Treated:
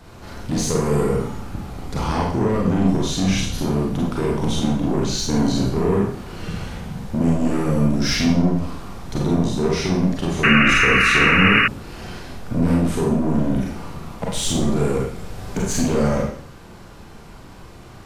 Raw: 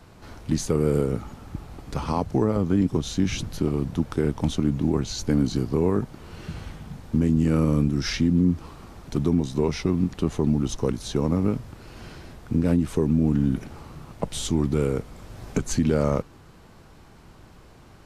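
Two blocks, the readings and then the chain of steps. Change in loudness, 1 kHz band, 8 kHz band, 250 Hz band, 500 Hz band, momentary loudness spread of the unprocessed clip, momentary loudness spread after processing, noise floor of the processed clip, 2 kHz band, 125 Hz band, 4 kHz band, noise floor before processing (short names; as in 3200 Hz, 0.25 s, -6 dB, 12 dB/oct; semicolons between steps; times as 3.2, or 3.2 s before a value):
+5.0 dB, +10.5 dB, +7.5 dB, +3.5 dB, +4.0 dB, 18 LU, 19 LU, -41 dBFS, +21.0 dB, +2.5 dB, +11.0 dB, -50 dBFS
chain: soft clip -21.5 dBFS, distortion -9 dB; Schroeder reverb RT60 0.56 s, combs from 32 ms, DRR -3 dB; painted sound noise, 10.43–11.68, 1100–2900 Hz -20 dBFS; gain +4 dB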